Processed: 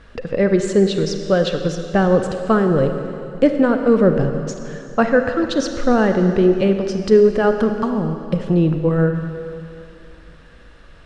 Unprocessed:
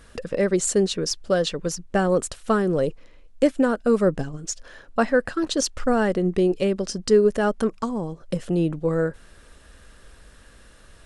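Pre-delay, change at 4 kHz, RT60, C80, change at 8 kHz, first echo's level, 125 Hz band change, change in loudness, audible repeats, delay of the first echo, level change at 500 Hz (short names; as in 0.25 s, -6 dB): 31 ms, +0.5 dB, 2.7 s, 7.5 dB, -7.0 dB, none, +8.5 dB, +5.5 dB, none, none, +5.5 dB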